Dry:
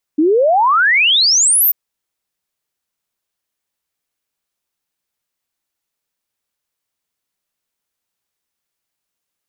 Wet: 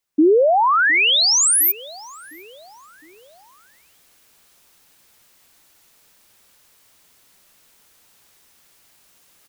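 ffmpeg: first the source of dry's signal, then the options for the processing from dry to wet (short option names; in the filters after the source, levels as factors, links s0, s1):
-f lavfi -i "aevalsrc='0.355*clip(min(t,1.54-t)/0.01,0,1)*sin(2*PI*290*1.54/log(15000/290)*(exp(log(15000/290)*t/1.54)-1))':d=1.54:s=44100"
-filter_complex "[0:a]areverse,acompressor=mode=upward:threshold=0.0158:ratio=2.5,areverse,asplit=2[s0][s1];[s1]adelay=709,lowpass=f=2000:p=1,volume=0.0944,asplit=2[s2][s3];[s3]adelay=709,lowpass=f=2000:p=1,volume=0.54,asplit=2[s4][s5];[s5]adelay=709,lowpass=f=2000:p=1,volume=0.54,asplit=2[s6][s7];[s7]adelay=709,lowpass=f=2000:p=1,volume=0.54[s8];[s0][s2][s4][s6][s8]amix=inputs=5:normalize=0,acrossover=split=370[s9][s10];[s10]acompressor=threshold=0.141:ratio=2[s11];[s9][s11]amix=inputs=2:normalize=0"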